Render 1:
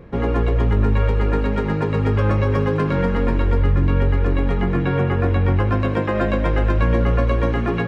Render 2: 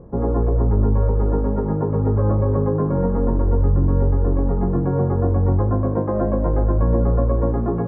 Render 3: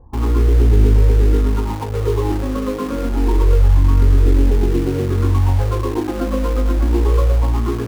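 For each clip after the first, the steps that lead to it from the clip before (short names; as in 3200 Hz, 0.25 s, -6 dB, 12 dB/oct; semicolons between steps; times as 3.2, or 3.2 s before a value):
LPF 1000 Hz 24 dB/oct
phaser stages 8, 0.27 Hz, lowest notch 110–1200 Hz; fixed phaser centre 620 Hz, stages 6; in parallel at -6.5 dB: bit-crush 5-bit; on the sum: gain +3.5 dB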